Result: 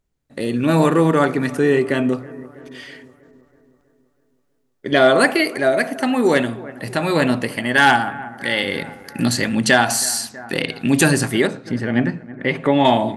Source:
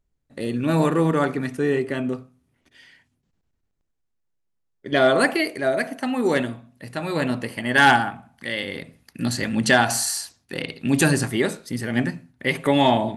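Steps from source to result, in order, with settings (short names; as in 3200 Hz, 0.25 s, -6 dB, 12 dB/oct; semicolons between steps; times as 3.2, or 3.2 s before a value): 11.47–12.85 tape spacing loss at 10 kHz 21 dB; analogue delay 0.323 s, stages 4096, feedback 54%, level -22.5 dB; AGC gain up to 8 dB; low shelf 94 Hz -7 dB; in parallel at +1 dB: compressor, threshold -27 dBFS, peak gain reduction 17.5 dB; on the sum: gain -2 dB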